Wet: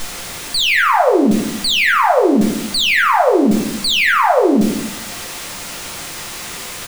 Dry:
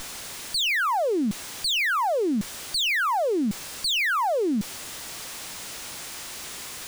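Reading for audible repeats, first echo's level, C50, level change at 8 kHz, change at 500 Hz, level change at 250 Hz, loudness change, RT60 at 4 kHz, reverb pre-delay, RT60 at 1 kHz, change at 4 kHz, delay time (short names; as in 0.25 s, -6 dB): 1, -13.5 dB, 6.0 dB, +7.5 dB, +12.0 dB, +12.5 dB, +12.0 dB, 0.50 s, 6 ms, 0.75 s, +9.0 dB, 0.175 s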